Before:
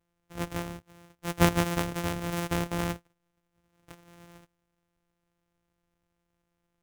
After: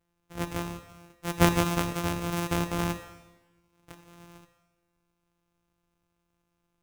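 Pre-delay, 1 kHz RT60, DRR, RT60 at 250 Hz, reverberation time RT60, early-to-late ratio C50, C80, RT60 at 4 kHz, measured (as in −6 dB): 30 ms, 1.2 s, 9.5 dB, 1.2 s, 1.2 s, 11.0 dB, 12.5 dB, 1.1 s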